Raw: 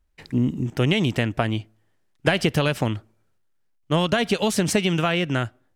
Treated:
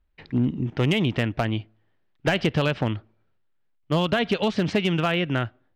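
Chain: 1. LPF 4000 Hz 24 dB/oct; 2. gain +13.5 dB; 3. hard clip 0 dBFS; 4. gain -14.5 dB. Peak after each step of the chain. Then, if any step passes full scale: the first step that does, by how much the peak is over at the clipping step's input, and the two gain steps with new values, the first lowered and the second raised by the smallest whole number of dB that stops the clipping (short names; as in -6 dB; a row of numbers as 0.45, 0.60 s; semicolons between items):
-6.5, +7.0, 0.0, -14.5 dBFS; step 2, 7.0 dB; step 2 +6.5 dB, step 4 -7.5 dB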